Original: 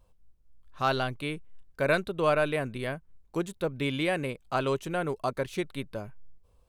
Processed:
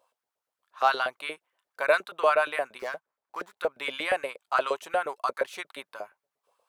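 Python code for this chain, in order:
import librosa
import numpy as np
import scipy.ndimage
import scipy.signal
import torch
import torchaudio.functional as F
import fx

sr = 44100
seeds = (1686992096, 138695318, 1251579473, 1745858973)

y = fx.median_filter(x, sr, points=15, at=(2.79, 3.57))
y = fx.filter_lfo_highpass(y, sr, shape='saw_up', hz=8.5, low_hz=520.0, high_hz=1600.0, q=2.6)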